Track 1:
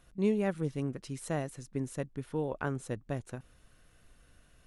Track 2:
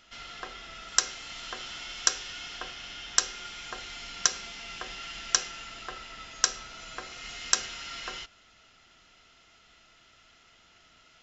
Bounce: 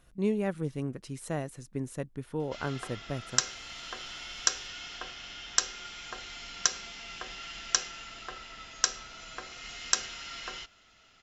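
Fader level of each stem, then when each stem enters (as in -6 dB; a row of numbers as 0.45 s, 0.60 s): 0.0 dB, -2.0 dB; 0.00 s, 2.40 s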